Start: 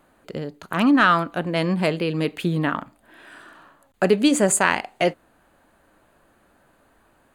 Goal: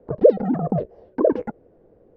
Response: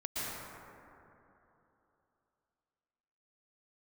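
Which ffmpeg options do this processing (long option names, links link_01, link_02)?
-filter_complex "[0:a]afreqshift=-110,asplit=2[link_01][link_02];[link_02]acompressor=threshold=-27dB:ratio=6,volume=1.5dB[link_03];[link_01][link_03]amix=inputs=2:normalize=0,asetrate=149940,aresample=44100,lowpass=frequency=480:width_type=q:width=4.9,lowshelf=frequency=94:gain=10.5,volume=-4dB"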